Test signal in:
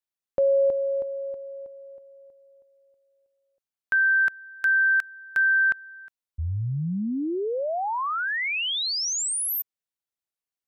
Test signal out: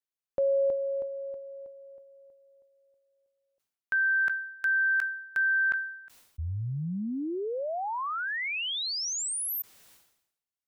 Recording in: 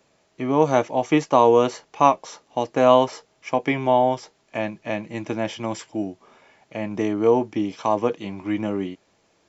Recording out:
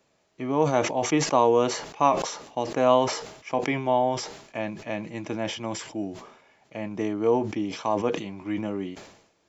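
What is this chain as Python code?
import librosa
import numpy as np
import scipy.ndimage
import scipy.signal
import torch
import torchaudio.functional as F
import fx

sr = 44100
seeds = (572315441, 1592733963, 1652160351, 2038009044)

y = fx.sustainer(x, sr, db_per_s=75.0)
y = y * 10.0 ** (-5.0 / 20.0)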